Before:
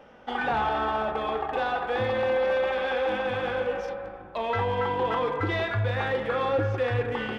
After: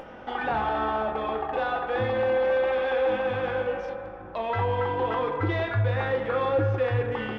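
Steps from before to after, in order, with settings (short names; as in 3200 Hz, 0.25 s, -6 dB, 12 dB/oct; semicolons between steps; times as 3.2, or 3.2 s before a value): LPF 2700 Hz 6 dB/oct; upward compressor, threshold -34 dBFS; on a send: reverb, pre-delay 3 ms, DRR 10 dB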